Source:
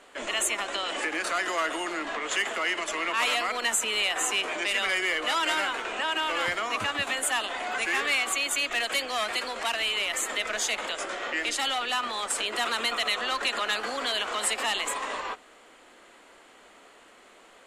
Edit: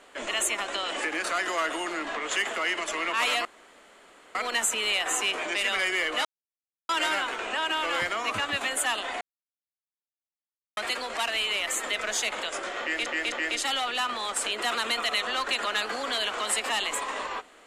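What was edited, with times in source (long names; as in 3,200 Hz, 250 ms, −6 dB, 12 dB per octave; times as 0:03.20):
0:03.45: splice in room tone 0.90 s
0:05.35: splice in silence 0.64 s
0:07.67–0:09.23: silence
0:11.26–0:11.52: repeat, 3 plays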